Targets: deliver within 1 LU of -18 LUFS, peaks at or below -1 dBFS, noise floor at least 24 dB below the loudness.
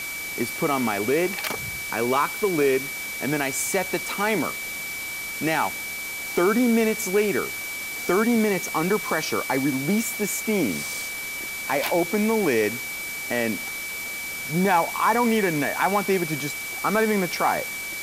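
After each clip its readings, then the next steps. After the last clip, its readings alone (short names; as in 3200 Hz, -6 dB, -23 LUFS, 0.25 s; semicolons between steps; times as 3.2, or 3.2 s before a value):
steady tone 2300 Hz; tone level -31 dBFS; noise floor -32 dBFS; noise floor target -48 dBFS; loudness -24.0 LUFS; peak -8.0 dBFS; loudness target -18.0 LUFS
-> notch 2300 Hz, Q 30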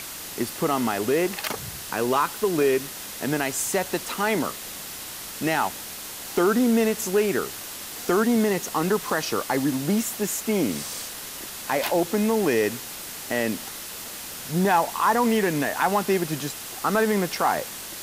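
steady tone none; noise floor -37 dBFS; noise floor target -49 dBFS
-> noise print and reduce 12 dB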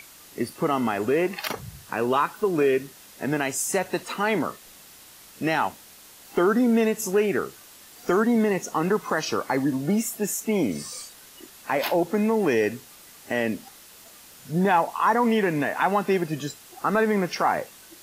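noise floor -49 dBFS; loudness -24.5 LUFS; peak -8.5 dBFS; loudness target -18.0 LUFS
-> gain +6.5 dB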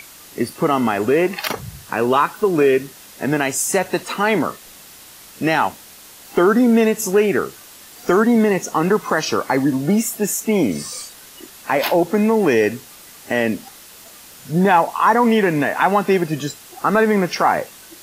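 loudness -18.0 LUFS; peak -2.0 dBFS; noise floor -42 dBFS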